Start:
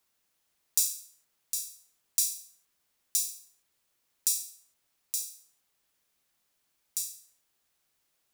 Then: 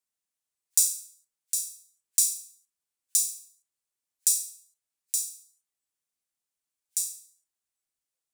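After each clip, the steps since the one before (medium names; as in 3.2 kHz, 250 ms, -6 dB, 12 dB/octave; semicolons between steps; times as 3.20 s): spectral noise reduction 15 dB; peaking EQ 8.4 kHz +8 dB 0.96 oct; trim -1 dB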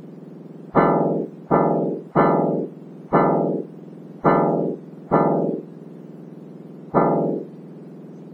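spectrum inverted on a logarithmic axis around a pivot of 1.8 kHz; spectrum-flattening compressor 10:1; trim -1 dB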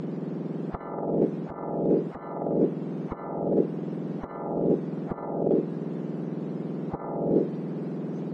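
compressor with a negative ratio -25 dBFS, ratio -0.5; distance through air 82 m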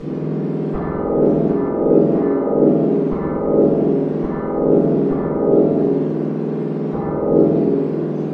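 reverberation RT60 2.1 s, pre-delay 4 ms, DRR -17 dB; trim -6.5 dB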